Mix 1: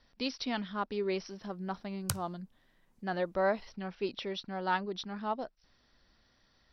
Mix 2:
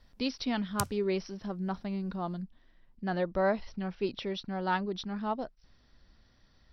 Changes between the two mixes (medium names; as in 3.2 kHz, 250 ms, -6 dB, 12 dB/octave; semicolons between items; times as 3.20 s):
speech: add bass shelf 210 Hz +10 dB; background: entry -1.30 s